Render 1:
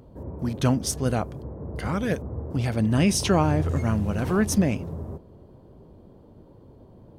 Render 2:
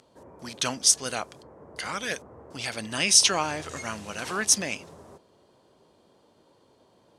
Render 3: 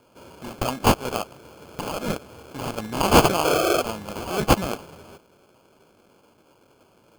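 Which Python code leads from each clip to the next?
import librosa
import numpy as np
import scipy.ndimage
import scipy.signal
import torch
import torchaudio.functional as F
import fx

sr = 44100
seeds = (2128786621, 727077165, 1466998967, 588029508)

y1 = fx.weighting(x, sr, curve='ITU-R 468')
y1 = F.gain(torch.from_numpy(y1), -1.5).numpy()
y2 = fx.spec_paint(y1, sr, seeds[0], shape='noise', start_s=3.44, length_s=0.38, low_hz=320.0, high_hz=750.0, level_db=-24.0)
y2 = fx.sample_hold(y2, sr, seeds[1], rate_hz=1900.0, jitter_pct=0)
y2 = F.gain(torch.from_numpy(y2), 3.5).numpy()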